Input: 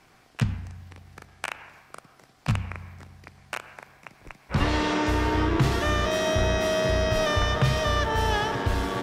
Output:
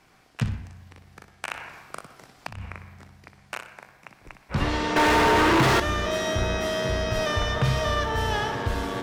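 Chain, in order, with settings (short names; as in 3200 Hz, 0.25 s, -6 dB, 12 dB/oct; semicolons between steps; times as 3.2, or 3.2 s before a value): 1.49–2.62 negative-ratio compressor -35 dBFS, ratio -1; flutter echo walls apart 10.4 m, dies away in 0.35 s; 4.96–5.8 overdrive pedal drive 39 dB, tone 2200 Hz, clips at -10.5 dBFS; gain -1.5 dB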